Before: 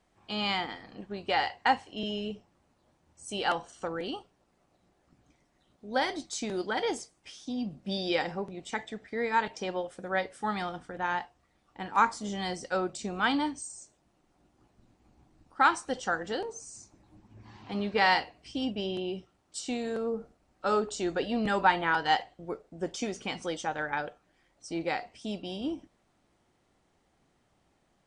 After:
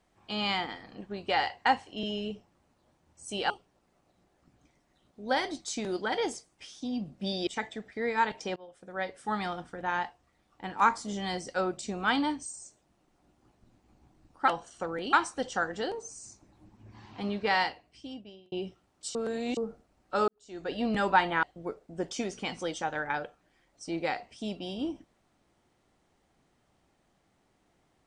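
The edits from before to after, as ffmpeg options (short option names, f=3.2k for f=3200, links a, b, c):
-filter_complex "[0:a]asplit=11[a][b][c][d][e][f][g][h][i][j][k];[a]atrim=end=3.502[l];[b]atrim=start=4.148:end=8.122[m];[c]atrim=start=8.628:end=9.72,asetpts=PTS-STARTPTS,afade=t=out:st=1.088:d=0.004:c=hsin:silence=0.0668344[n];[d]atrim=start=9.72:end=15.642,asetpts=PTS-STARTPTS,afade=t=in:d=0.78:silence=0.0668344[o];[e]atrim=start=3.498:end=4.152[p];[f]atrim=start=15.638:end=19.03,asetpts=PTS-STARTPTS,afade=t=out:st=2.052:d=1.34[q];[g]atrim=start=19.03:end=19.662,asetpts=PTS-STARTPTS,afade=t=in:d=0.004:c=hsin[r];[h]atrim=start=19.658:end=20.082,asetpts=PTS-STARTPTS,areverse[s];[i]atrim=start=20.078:end=20.79,asetpts=PTS-STARTPTS,afade=t=out:st=0.708:d=0.004:c=hsin[t];[j]atrim=start=20.79:end=21.942,asetpts=PTS-STARTPTS,afade=t=in:d=0.52:c=qua[u];[k]atrim=start=22.258[v];[l][m]acrossfade=d=0.004:c1=hsin:c2=hsin[w];[n][o]concat=n=2:v=0:a=1[x];[w][x]acrossfade=d=0.004:c1=hsin:c2=hsin[y];[y][p]acrossfade=d=0.004:c1=hsin:c2=hsin[z];[q][r]concat=n=2:v=0:a=1[aa];[z][aa]acrossfade=d=0.004:c1=hsin:c2=hsin[ab];[ab][s]acrossfade=d=0.004:c1=hsin:c2=hsin[ac];[t][u]concat=n=2:v=0:a=1[ad];[ac][ad]acrossfade=d=0.004:c1=hsin:c2=hsin[ae];[ae][v]acrossfade=d=0.004:c1=hsin:c2=hsin"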